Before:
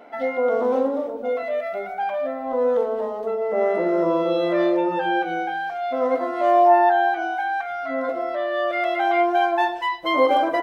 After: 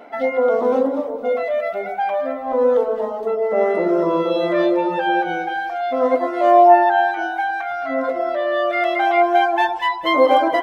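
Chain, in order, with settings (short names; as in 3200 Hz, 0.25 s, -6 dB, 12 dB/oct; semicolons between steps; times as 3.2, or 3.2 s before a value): reverb removal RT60 0.8 s; echo with dull and thin repeats by turns 0.108 s, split 990 Hz, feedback 58%, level -7.5 dB; gain +4.5 dB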